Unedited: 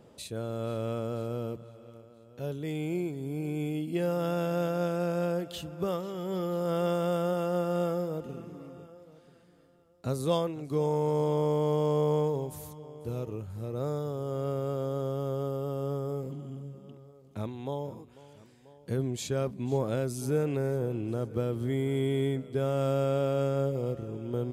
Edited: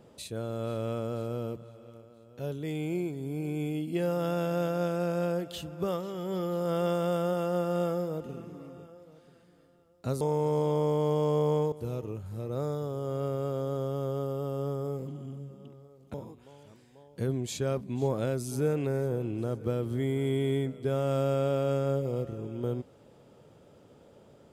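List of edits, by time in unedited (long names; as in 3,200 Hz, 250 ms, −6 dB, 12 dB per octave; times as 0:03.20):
0:10.21–0:10.83: remove
0:12.34–0:12.96: remove
0:17.38–0:17.84: remove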